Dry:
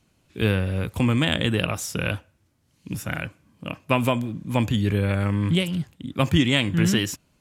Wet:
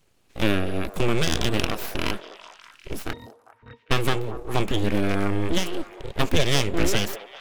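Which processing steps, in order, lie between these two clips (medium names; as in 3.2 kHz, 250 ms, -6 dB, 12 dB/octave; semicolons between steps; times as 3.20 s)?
full-wave rectifier; 3.13–3.91 s: pitch-class resonator A#, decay 0.11 s; repeats whose band climbs or falls 200 ms, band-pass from 550 Hz, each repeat 0.7 oct, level -9 dB; trim +1.5 dB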